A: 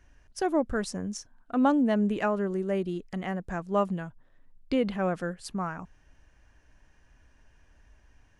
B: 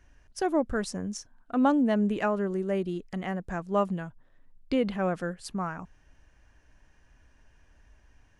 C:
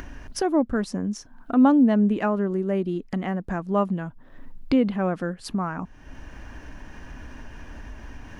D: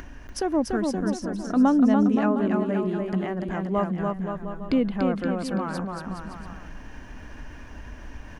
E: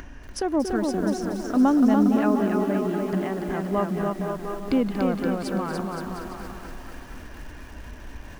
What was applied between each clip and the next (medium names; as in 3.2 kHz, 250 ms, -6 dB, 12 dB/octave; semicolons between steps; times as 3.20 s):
no audible change
ten-band graphic EQ 250 Hz +8 dB, 1 kHz +3 dB, 8 kHz -6 dB; upward compressor, threshold -22 dBFS
bouncing-ball echo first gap 290 ms, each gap 0.8×, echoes 5; trim -2.5 dB
repeats whose band climbs or falls 230 ms, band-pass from 380 Hz, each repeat 0.7 oct, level -9.5 dB; bit-crushed delay 235 ms, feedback 80%, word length 7-bit, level -11 dB